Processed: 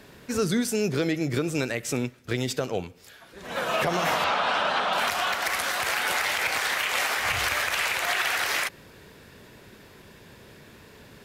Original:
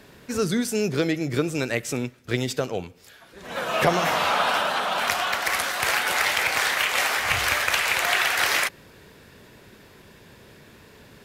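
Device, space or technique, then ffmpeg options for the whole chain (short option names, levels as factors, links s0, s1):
clipper into limiter: -filter_complex "[0:a]asettb=1/sr,asplit=3[s0][s1][s2];[s0]atrim=end=4.244[s3];[s1]atrim=start=4.24:end=4.93,asetpts=PTS-STARTPTS,afade=t=in:d=0.004:c=qsin,afade=t=out:st=0.686:d=0.004:c=qsin,lowpass=5400[s4];[s2]atrim=start=4.926[s5];[s3][s4]acrossfade=d=0.004:c1=hsin:c2=qsin[s6];[s6][s5]acrossfade=d=0.004:c1=qsin:c2=hsin,asoftclip=type=hard:threshold=0.398,alimiter=limit=0.178:level=0:latency=1:release=90"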